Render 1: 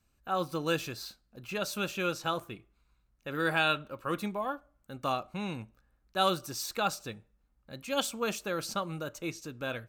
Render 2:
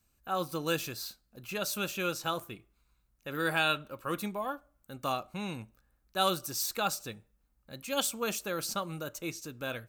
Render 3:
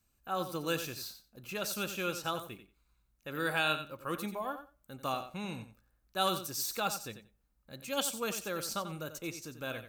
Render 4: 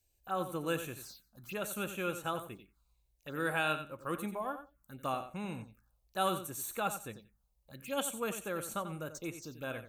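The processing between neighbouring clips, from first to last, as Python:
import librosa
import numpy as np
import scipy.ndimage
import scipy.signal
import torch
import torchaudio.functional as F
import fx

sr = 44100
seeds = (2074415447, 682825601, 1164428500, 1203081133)

y1 = fx.high_shelf(x, sr, hz=7300.0, db=11.0)
y1 = y1 * librosa.db_to_amplitude(-1.5)
y2 = fx.echo_feedback(y1, sr, ms=90, feedback_pct=15, wet_db=-10.5)
y2 = y2 * librosa.db_to_amplitude(-2.5)
y3 = fx.env_phaser(y2, sr, low_hz=200.0, high_hz=5000.0, full_db=-37.0)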